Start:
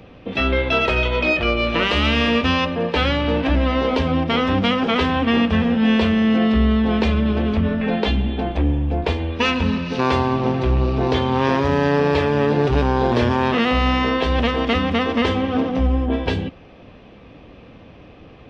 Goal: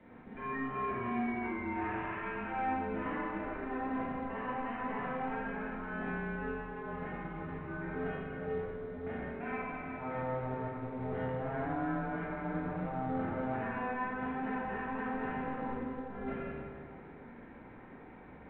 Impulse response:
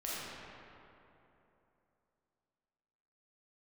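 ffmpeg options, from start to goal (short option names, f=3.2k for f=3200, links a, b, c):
-filter_complex "[0:a]aemphasis=mode=production:type=75fm,areverse,acompressor=threshold=-27dB:ratio=8,areverse[a];[1:a]atrim=start_sample=2205,asetrate=70560,aresample=44100[b];[a][b]afir=irnorm=-1:irlink=0,highpass=f=390:t=q:w=0.5412,highpass=f=390:t=q:w=1.307,lowpass=f=2.1k:t=q:w=0.5176,lowpass=f=2.1k:t=q:w=0.7071,lowpass=f=2.1k:t=q:w=1.932,afreqshift=-260,volume=-2.5dB" -ar 8000 -c:a pcm_mulaw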